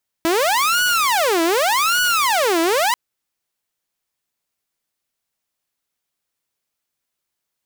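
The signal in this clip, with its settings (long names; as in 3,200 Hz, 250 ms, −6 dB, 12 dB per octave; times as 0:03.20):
siren wail 327–1,470 Hz 0.85 per second saw −12.5 dBFS 2.69 s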